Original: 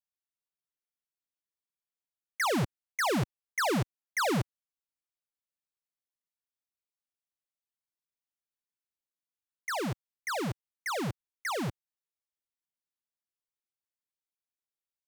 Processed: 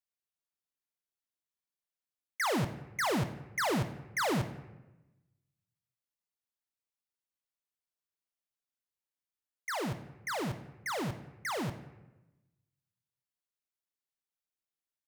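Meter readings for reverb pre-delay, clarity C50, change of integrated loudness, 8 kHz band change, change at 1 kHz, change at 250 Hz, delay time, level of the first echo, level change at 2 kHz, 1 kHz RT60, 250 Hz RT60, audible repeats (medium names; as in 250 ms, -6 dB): 20 ms, 11.5 dB, -2.0 dB, -2.5 dB, -2.0 dB, -2.0 dB, 88 ms, -17.5 dB, -2.0 dB, 1.0 s, 1.2 s, 1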